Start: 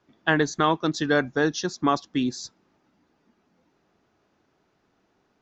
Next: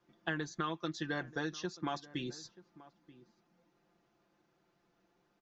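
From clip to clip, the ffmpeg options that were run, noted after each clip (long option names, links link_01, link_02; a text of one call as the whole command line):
ffmpeg -i in.wav -filter_complex "[0:a]aecho=1:1:5.8:0.67,acrossover=split=1600|3300[link_01][link_02][link_03];[link_01]acompressor=threshold=-28dB:ratio=4[link_04];[link_02]acompressor=threshold=-36dB:ratio=4[link_05];[link_03]acompressor=threshold=-44dB:ratio=4[link_06];[link_04][link_05][link_06]amix=inputs=3:normalize=0,asplit=2[link_07][link_08];[link_08]adelay=932.9,volume=-19dB,highshelf=frequency=4000:gain=-21[link_09];[link_07][link_09]amix=inputs=2:normalize=0,volume=-8dB" out.wav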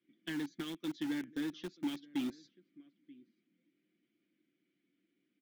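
ffmpeg -i in.wav -filter_complex "[0:a]asplit=3[link_01][link_02][link_03];[link_01]bandpass=frequency=270:width_type=q:width=8,volume=0dB[link_04];[link_02]bandpass=frequency=2290:width_type=q:width=8,volume=-6dB[link_05];[link_03]bandpass=frequency=3010:width_type=q:width=8,volume=-9dB[link_06];[link_04][link_05][link_06]amix=inputs=3:normalize=0,asplit=2[link_07][link_08];[link_08]acrusher=bits=7:mix=0:aa=0.000001,volume=-8dB[link_09];[link_07][link_09]amix=inputs=2:normalize=0,asoftclip=type=hard:threshold=-37.5dB,volume=7.5dB" out.wav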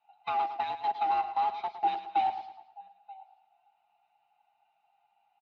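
ffmpeg -i in.wav -af "afftfilt=real='real(if(lt(b,1008),b+24*(1-2*mod(floor(b/24),2)),b),0)':imag='imag(if(lt(b,1008),b+24*(1-2*mod(floor(b/24),2)),b),0)':win_size=2048:overlap=0.75,highpass=130,equalizer=frequency=160:width_type=q:width=4:gain=-9,equalizer=frequency=290:width_type=q:width=4:gain=-3,equalizer=frequency=490:width_type=q:width=4:gain=-3,equalizer=frequency=1800:width_type=q:width=4:gain=-6,equalizer=frequency=3300:width_type=q:width=4:gain=-6,lowpass=frequency=3400:width=0.5412,lowpass=frequency=3400:width=1.3066,aecho=1:1:109|218|327|436:0.282|0.116|0.0474|0.0194,volume=9dB" out.wav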